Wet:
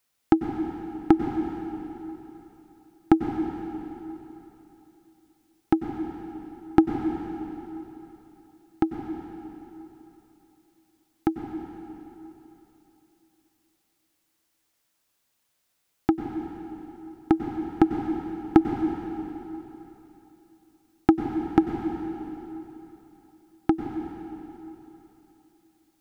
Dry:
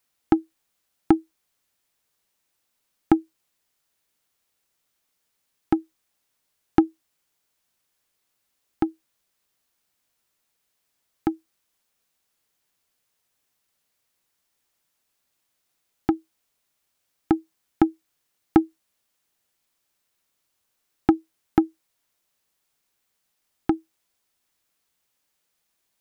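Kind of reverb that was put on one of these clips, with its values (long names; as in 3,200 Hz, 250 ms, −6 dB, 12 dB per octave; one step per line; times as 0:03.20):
dense smooth reverb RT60 3.3 s, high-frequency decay 0.9×, pre-delay 85 ms, DRR 3.5 dB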